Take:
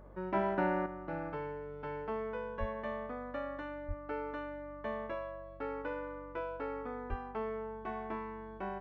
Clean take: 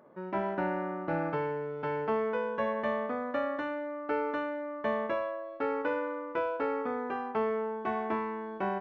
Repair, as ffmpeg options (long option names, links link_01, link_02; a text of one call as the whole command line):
ffmpeg -i in.wav -filter_complex "[0:a]bandreject=frequency=47.6:width_type=h:width=4,bandreject=frequency=95.2:width_type=h:width=4,bandreject=frequency=142.8:width_type=h:width=4,bandreject=frequency=190.4:width_type=h:width=4,asplit=3[link_01][link_02][link_03];[link_01]afade=type=out:start_time=2.59:duration=0.02[link_04];[link_02]highpass=frequency=140:width=0.5412,highpass=frequency=140:width=1.3066,afade=type=in:start_time=2.59:duration=0.02,afade=type=out:start_time=2.71:duration=0.02[link_05];[link_03]afade=type=in:start_time=2.71:duration=0.02[link_06];[link_04][link_05][link_06]amix=inputs=3:normalize=0,asplit=3[link_07][link_08][link_09];[link_07]afade=type=out:start_time=3.87:duration=0.02[link_10];[link_08]highpass=frequency=140:width=0.5412,highpass=frequency=140:width=1.3066,afade=type=in:start_time=3.87:duration=0.02,afade=type=out:start_time=3.99:duration=0.02[link_11];[link_09]afade=type=in:start_time=3.99:duration=0.02[link_12];[link_10][link_11][link_12]amix=inputs=3:normalize=0,asplit=3[link_13][link_14][link_15];[link_13]afade=type=out:start_time=7.09:duration=0.02[link_16];[link_14]highpass=frequency=140:width=0.5412,highpass=frequency=140:width=1.3066,afade=type=in:start_time=7.09:duration=0.02,afade=type=out:start_time=7.21:duration=0.02[link_17];[link_15]afade=type=in:start_time=7.21:duration=0.02[link_18];[link_16][link_17][link_18]amix=inputs=3:normalize=0,asetnsamples=nb_out_samples=441:pad=0,asendcmd='0.86 volume volume 8dB',volume=0dB" out.wav